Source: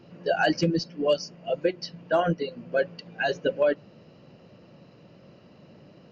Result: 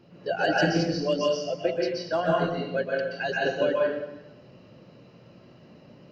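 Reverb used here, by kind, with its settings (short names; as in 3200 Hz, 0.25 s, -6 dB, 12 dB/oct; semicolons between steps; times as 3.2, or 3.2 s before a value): plate-style reverb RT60 0.91 s, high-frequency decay 0.85×, pre-delay 0.115 s, DRR -3.5 dB; gain -4 dB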